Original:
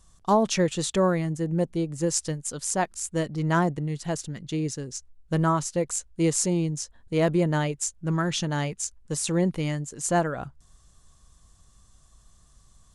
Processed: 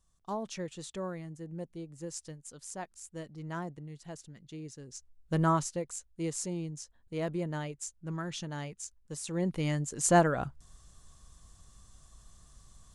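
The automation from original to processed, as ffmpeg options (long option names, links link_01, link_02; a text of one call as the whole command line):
ffmpeg -i in.wav -af "volume=9dB,afade=type=in:start_time=4.74:duration=0.81:silence=0.237137,afade=type=out:start_time=5.55:duration=0.29:silence=0.375837,afade=type=in:start_time=9.3:duration=0.68:silence=0.251189" out.wav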